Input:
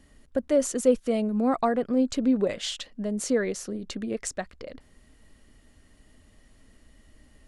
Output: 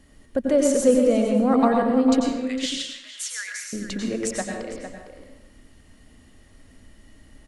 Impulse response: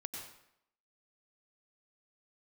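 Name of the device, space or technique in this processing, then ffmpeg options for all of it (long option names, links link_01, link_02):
bathroom: -filter_complex "[0:a]asettb=1/sr,asplit=3[link_01][link_02][link_03];[link_01]atrim=end=2.204[link_04];[link_02]atrim=start=2.2:end=3.73,asetpts=PTS-STARTPTS,afade=type=in:duration=0.004:curve=qsin,afade=type=out:start_time=1.526:duration=0.004:curve=qsin,highpass=frequency=1500:width=0.5412,highpass=frequency=1500:width=1.3066[link_05];[link_03]atrim=start=3.726[link_06];[link_04][link_05]acrossfade=duration=0.004:curve1=hsin:curve2=qsin[link_07];[link_07][link_06]acrossfade=duration=0.004:curve1=qsin:curve2=hsin,asplit=2[link_08][link_09];[link_09]adelay=454.8,volume=-9dB,highshelf=frequency=4000:gain=-10.2[link_10];[link_08][link_10]amix=inputs=2:normalize=0[link_11];[1:a]atrim=start_sample=2205[link_12];[link_11][link_12]afir=irnorm=-1:irlink=0,volume=6.5dB"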